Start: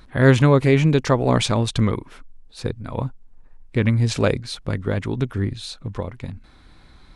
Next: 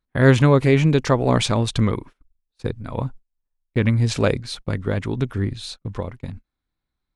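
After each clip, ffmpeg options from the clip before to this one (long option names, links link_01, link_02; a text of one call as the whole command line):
ffmpeg -i in.wav -af "agate=range=-33dB:threshold=-35dB:ratio=16:detection=peak" out.wav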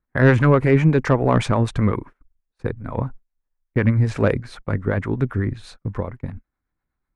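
ffmpeg -i in.wav -filter_complex "[0:a]highshelf=frequency=2500:width_type=q:width=1.5:gain=-10.5,acontrast=43,acrossover=split=470[link_01][link_02];[link_01]aeval=exprs='val(0)*(1-0.5/2+0.5/2*cos(2*PI*8*n/s))':channel_layout=same[link_03];[link_02]aeval=exprs='val(0)*(1-0.5/2-0.5/2*cos(2*PI*8*n/s))':channel_layout=same[link_04];[link_03][link_04]amix=inputs=2:normalize=0,volume=-2dB" out.wav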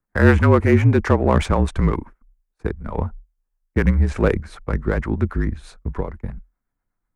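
ffmpeg -i in.wav -filter_complex "[0:a]afreqshift=-41,acrossover=split=4300[link_01][link_02];[link_01]adynamicsmooth=sensitivity=7:basefreq=3300[link_03];[link_03][link_02]amix=inputs=2:normalize=0,volume=1dB" out.wav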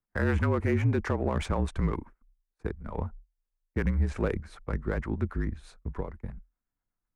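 ffmpeg -i in.wav -af "alimiter=limit=-8dB:level=0:latency=1:release=55,volume=-9dB" out.wav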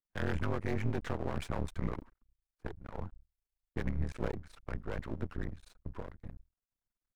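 ffmpeg -i in.wav -af "aeval=exprs='max(val(0),0)':channel_layout=same,volume=-4dB" out.wav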